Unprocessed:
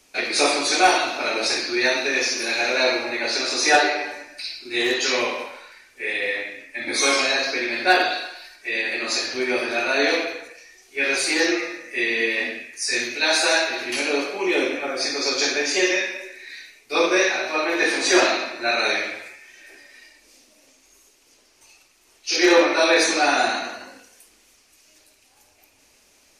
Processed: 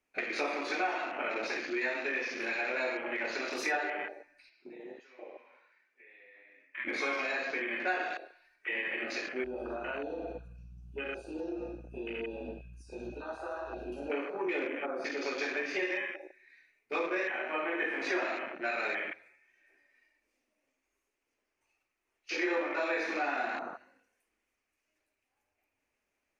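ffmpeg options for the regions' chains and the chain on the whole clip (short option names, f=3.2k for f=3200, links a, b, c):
-filter_complex "[0:a]asettb=1/sr,asplit=3[a][b][c];[a]atrim=end=4.494[d];[b]atrim=start=4.49:end=6.78,asetpts=PTS-STARTPTS,afade=t=in:d=0.004:c=qsin,afade=t=out:st=2.286:d=0.004:c=qsin,acompressor=threshold=-33dB:ratio=6:attack=3.2:release=140:knee=1:detection=peak,highpass=220,lowpass=6.7k[e];[c]atrim=start=6.776[f];[d][e]acrossfade=d=0.004:c1=hsin:c2=qsin[g];[g][f]acrossfade=d=0.004:c1=qsin:c2=hsin,asettb=1/sr,asplit=3[h][i][j];[h]atrim=end=9.444[k];[i]atrim=start=9.44:end=14.1,asetpts=PTS-STARTPTS,afade=t=in:d=0.004:c=qsin,afade=t=out:st=4.656:d=0.004:c=qsin,asuperstop=centerf=2000:order=20:qfactor=2.4,aeval=exprs='val(0)+0.00891*(sin(2*PI*60*n/s)+sin(2*PI*2*60*n/s)/2+sin(2*PI*3*60*n/s)/3+sin(2*PI*4*60*n/s)/4+sin(2*PI*5*60*n/s)/5)':c=same,acompressor=threshold=-25dB:ratio=10:attack=3.2:release=140:knee=1:detection=peak[l];[j]atrim=start=14.096[m];[k][l]acrossfade=d=0.004:c1=hsin:c2=qsin[n];[n][m]acrossfade=d=0.004:c1=qsin:c2=hsin,afwtdn=0.0398,highshelf=f=3k:t=q:w=1.5:g=-9.5,acompressor=threshold=-26dB:ratio=3,volume=-6dB"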